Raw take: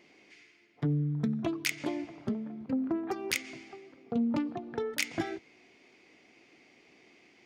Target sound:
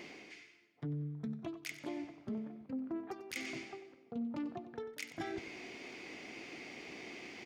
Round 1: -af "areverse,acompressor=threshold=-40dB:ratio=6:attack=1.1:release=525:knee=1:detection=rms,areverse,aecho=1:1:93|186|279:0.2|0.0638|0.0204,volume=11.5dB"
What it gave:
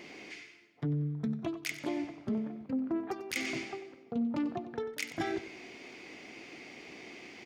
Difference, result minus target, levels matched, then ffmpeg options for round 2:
downward compressor: peak gain reduction −7 dB
-af "areverse,acompressor=threshold=-48.5dB:ratio=6:attack=1.1:release=525:knee=1:detection=rms,areverse,aecho=1:1:93|186|279:0.2|0.0638|0.0204,volume=11.5dB"

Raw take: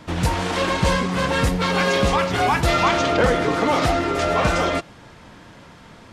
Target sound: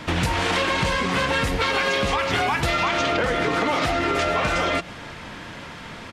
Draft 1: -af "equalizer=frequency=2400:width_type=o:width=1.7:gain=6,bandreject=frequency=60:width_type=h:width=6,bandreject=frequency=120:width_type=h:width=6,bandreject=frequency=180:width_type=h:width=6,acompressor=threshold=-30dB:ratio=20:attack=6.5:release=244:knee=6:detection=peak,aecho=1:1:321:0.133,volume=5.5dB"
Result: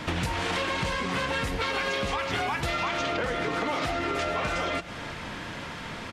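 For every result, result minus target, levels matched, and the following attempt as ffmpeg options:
downward compressor: peak gain reduction +6.5 dB; echo-to-direct +10 dB
-af "equalizer=frequency=2400:width_type=o:width=1.7:gain=6,bandreject=frequency=60:width_type=h:width=6,bandreject=frequency=120:width_type=h:width=6,bandreject=frequency=180:width_type=h:width=6,acompressor=threshold=-23dB:ratio=20:attack=6.5:release=244:knee=6:detection=peak,aecho=1:1:321:0.133,volume=5.5dB"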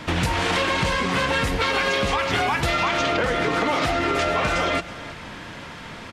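echo-to-direct +10 dB
-af "equalizer=frequency=2400:width_type=o:width=1.7:gain=6,bandreject=frequency=60:width_type=h:width=6,bandreject=frequency=120:width_type=h:width=6,bandreject=frequency=180:width_type=h:width=6,acompressor=threshold=-23dB:ratio=20:attack=6.5:release=244:knee=6:detection=peak,aecho=1:1:321:0.0422,volume=5.5dB"

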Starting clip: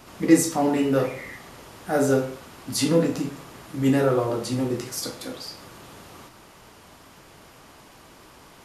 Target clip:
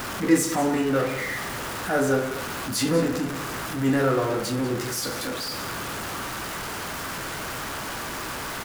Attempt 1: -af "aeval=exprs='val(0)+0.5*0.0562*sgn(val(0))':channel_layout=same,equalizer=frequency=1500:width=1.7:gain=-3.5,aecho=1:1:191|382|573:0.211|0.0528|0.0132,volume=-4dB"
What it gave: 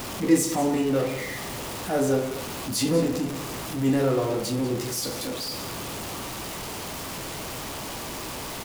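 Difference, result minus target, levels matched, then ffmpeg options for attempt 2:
2,000 Hz band −5.5 dB
-af "aeval=exprs='val(0)+0.5*0.0562*sgn(val(0))':channel_layout=same,equalizer=frequency=1500:width=1.7:gain=6.5,aecho=1:1:191|382|573:0.211|0.0528|0.0132,volume=-4dB"

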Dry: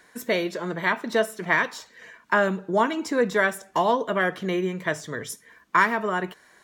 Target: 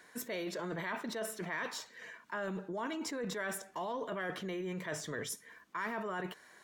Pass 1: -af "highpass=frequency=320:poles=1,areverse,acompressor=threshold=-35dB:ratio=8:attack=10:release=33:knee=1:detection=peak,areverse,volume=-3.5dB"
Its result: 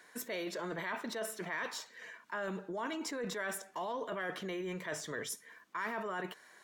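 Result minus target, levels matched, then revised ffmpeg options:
125 Hz band −3.0 dB
-af "highpass=frequency=110:poles=1,areverse,acompressor=threshold=-35dB:ratio=8:attack=10:release=33:knee=1:detection=peak,areverse,volume=-3.5dB"

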